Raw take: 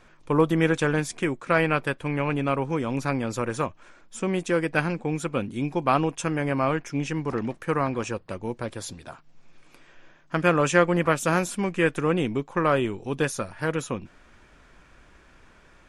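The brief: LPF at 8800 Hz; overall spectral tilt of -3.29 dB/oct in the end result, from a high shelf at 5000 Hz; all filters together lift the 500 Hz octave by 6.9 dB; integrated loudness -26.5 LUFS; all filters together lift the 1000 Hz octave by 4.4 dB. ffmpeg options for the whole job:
-af "lowpass=8.8k,equalizer=f=500:t=o:g=7,equalizer=f=1k:t=o:g=4,highshelf=f=5k:g=-5.5,volume=-5dB"

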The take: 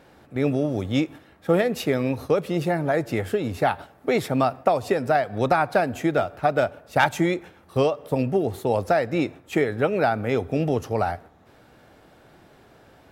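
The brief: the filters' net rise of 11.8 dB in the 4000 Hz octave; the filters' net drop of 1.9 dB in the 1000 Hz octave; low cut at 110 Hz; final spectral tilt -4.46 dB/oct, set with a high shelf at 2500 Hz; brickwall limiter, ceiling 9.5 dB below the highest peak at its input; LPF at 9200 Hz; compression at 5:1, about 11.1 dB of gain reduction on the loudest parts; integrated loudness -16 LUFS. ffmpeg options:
-af "highpass=110,lowpass=9.2k,equalizer=f=1k:t=o:g=-4.5,highshelf=f=2.5k:g=7,equalizer=f=4k:t=o:g=9,acompressor=threshold=-28dB:ratio=5,volume=18.5dB,alimiter=limit=-4.5dB:level=0:latency=1"

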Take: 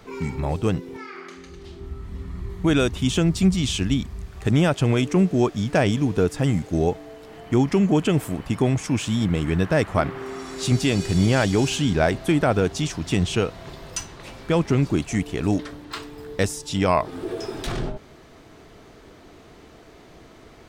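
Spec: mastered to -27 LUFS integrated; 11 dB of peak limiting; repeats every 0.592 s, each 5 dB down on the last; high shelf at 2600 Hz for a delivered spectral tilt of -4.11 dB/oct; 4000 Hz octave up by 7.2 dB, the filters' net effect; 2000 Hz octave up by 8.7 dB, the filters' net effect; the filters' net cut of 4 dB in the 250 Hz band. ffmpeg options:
-af "equalizer=f=250:t=o:g=-6,equalizer=f=2k:t=o:g=9,highshelf=f=2.6k:g=3.5,equalizer=f=4k:t=o:g=3,alimiter=limit=-13.5dB:level=0:latency=1,aecho=1:1:592|1184|1776|2368|2960|3552|4144:0.562|0.315|0.176|0.0988|0.0553|0.031|0.0173,volume=-2.5dB"

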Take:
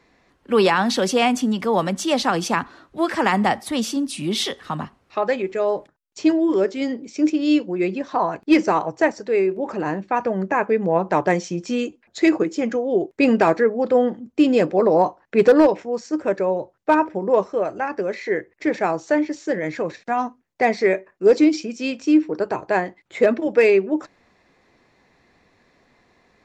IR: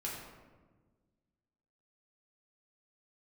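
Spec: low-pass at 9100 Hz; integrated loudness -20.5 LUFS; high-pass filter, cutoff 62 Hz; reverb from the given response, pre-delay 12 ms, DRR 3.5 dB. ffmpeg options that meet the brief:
-filter_complex "[0:a]highpass=62,lowpass=9.1k,asplit=2[a][b];[1:a]atrim=start_sample=2205,adelay=12[c];[b][c]afir=irnorm=-1:irlink=0,volume=-5dB[d];[a][d]amix=inputs=2:normalize=0,volume=-2dB"

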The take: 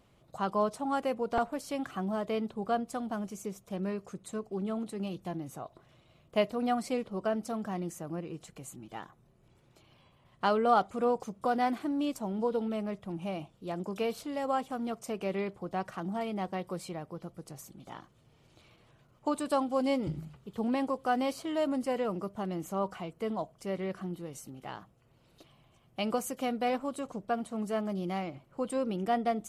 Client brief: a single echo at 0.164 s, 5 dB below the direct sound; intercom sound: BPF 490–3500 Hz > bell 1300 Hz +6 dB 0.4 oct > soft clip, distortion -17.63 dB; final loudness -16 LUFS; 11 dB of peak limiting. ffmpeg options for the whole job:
-af "alimiter=level_in=0.5dB:limit=-24dB:level=0:latency=1,volume=-0.5dB,highpass=490,lowpass=3.5k,equalizer=f=1.3k:t=o:w=0.4:g=6,aecho=1:1:164:0.562,asoftclip=threshold=-27dB,volume=23.5dB"

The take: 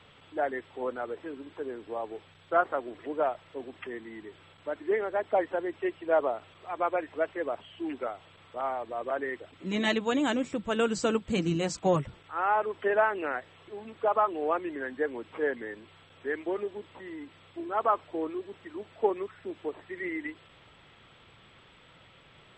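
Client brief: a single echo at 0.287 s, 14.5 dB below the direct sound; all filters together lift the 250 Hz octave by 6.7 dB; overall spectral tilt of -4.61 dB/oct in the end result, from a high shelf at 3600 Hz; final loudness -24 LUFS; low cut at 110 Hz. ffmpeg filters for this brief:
-af "highpass=110,equalizer=f=250:t=o:g=9,highshelf=f=3.6k:g=4,aecho=1:1:287:0.188,volume=4.5dB"

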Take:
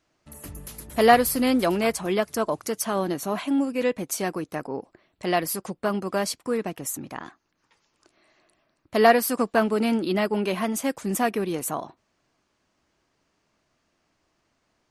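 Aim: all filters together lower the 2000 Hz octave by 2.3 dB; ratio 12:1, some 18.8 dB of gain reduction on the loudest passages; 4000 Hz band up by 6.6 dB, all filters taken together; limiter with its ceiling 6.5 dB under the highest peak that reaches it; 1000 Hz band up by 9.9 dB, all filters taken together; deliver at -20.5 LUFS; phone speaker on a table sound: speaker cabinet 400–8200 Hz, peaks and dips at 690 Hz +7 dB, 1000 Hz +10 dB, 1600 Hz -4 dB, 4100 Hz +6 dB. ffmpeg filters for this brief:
-af "equalizer=f=1k:t=o:g=4.5,equalizer=f=2k:t=o:g=-4,equalizer=f=4k:t=o:g=6,acompressor=threshold=-28dB:ratio=12,alimiter=limit=-23dB:level=0:latency=1,highpass=f=400:w=0.5412,highpass=f=400:w=1.3066,equalizer=f=690:t=q:w=4:g=7,equalizer=f=1k:t=q:w=4:g=10,equalizer=f=1.6k:t=q:w=4:g=-4,equalizer=f=4.1k:t=q:w=4:g=6,lowpass=f=8.2k:w=0.5412,lowpass=f=8.2k:w=1.3066,volume=12.5dB"

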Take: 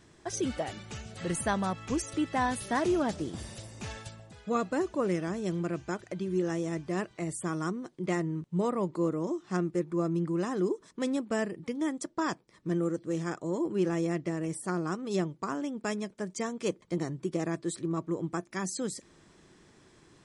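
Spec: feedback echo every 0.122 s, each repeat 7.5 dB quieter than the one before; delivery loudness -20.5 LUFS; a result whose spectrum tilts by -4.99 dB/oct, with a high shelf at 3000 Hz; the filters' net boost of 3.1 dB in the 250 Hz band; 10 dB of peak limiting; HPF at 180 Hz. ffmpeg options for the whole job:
-af "highpass=180,equalizer=f=250:t=o:g=6,highshelf=f=3k:g=5,alimiter=limit=-23.5dB:level=0:latency=1,aecho=1:1:122|244|366|488|610:0.422|0.177|0.0744|0.0312|0.0131,volume=12dB"

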